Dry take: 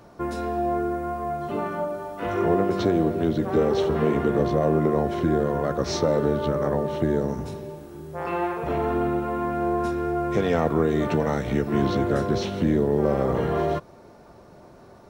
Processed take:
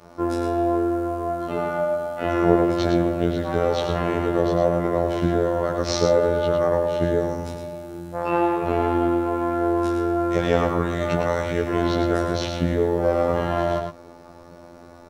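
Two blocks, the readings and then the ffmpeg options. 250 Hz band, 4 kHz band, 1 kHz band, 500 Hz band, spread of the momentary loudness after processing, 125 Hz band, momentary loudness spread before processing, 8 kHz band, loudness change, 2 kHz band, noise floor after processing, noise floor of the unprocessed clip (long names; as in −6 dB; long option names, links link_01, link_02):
+1.0 dB, +4.0 dB, +2.5 dB, +2.5 dB, 6 LU, +0.5 dB, 8 LU, +4.5 dB, +2.0 dB, +3.5 dB, −45 dBFS, −49 dBFS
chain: -af "adynamicequalizer=threshold=0.0158:dfrequency=260:dqfactor=1.5:tfrequency=260:tqfactor=1.5:attack=5:release=100:ratio=0.375:range=3.5:mode=cutabove:tftype=bell,afftfilt=real='hypot(re,im)*cos(PI*b)':imag='0':win_size=2048:overlap=0.75,aecho=1:1:108:0.501,volume=6.5dB"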